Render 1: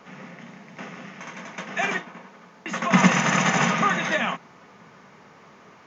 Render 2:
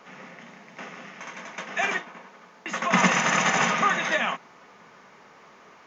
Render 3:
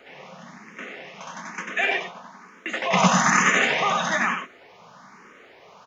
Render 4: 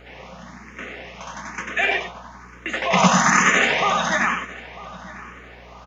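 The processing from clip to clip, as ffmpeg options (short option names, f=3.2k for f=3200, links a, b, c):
-af "equalizer=f=120:w=0.6:g=-9.5"
-filter_complex "[0:a]asplit=2[a][b];[b]aecho=0:1:95:0.531[c];[a][c]amix=inputs=2:normalize=0,asplit=2[d][e];[e]afreqshift=1.1[f];[d][f]amix=inputs=2:normalize=1,volume=4.5dB"
-filter_complex "[0:a]aeval=exprs='val(0)+0.00316*(sin(2*PI*60*n/s)+sin(2*PI*2*60*n/s)/2+sin(2*PI*3*60*n/s)/3+sin(2*PI*4*60*n/s)/4+sin(2*PI*5*60*n/s)/5)':c=same,asplit=2[a][b];[b]adelay=949,lowpass=f=3.2k:p=1,volume=-18.5dB,asplit=2[c][d];[d]adelay=949,lowpass=f=3.2k:p=1,volume=0.39,asplit=2[e][f];[f]adelay=949,lowpass=f=3.2k:p=1,volume=0.39[g];[a][c][e][g]amix=inputs=4:normalize=0,volume=2.5dB"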